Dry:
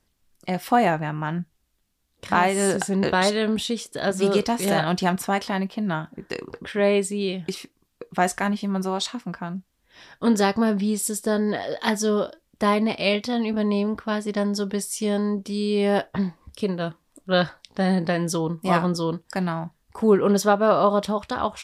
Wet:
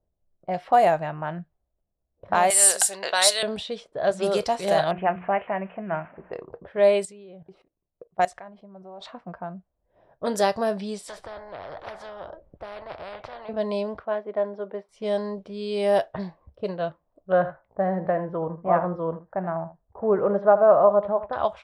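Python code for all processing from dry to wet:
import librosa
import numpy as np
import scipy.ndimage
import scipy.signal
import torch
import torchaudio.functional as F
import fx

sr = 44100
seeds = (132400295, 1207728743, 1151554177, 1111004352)

y = fx.chain(x, sr, fx.highpass(hz=470.0, slope=6),
    fx.tilt_eq(slope=4.5), at=(2.5, 3.43))
y = fx.chain(y, sr, fx.crossing_spikes(level_db=-21.5),
    fx.steep_lowpass(hz=2700.0, slope=72),
    fx.hum_notches(base_hz=60, count=6), at=(4.91, 6.33))
y = fx.chain(y, sr, fx.high_shelf(hz=2500.0, db=5.0),
    fx.level_steps(step_db=19), at=(7.05, 9.01))
y = fx.chain(y, sr, fx.high_shelf(hz=2500.0, db=-11.0),
    fx.spectral_comp(ratio=10.0), at=(11.08, 13.49))
y = fx.chain(y, sr, fx.highpass(hz=240.0, slope=24),
    fx.air_absorb(metres=340.0), at=(14.05, 14.89))
y = fx.chain(y, sr, fx.lowpass(hz=1700.0, slope=24),
    fx.echo_single(ms=79, db=-13.5), at=(17.32, 21.33))
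y = fx.env_lowpass(y, sr, base_hz=520.0, full_db=-16.5)
y = fx.graphic_eq_15(y, sr, hz=(250, 630, 4000, 10000), db=(-9, 11, 3, 6))
y = y * 10.0 ** (-5.0 / 20.0)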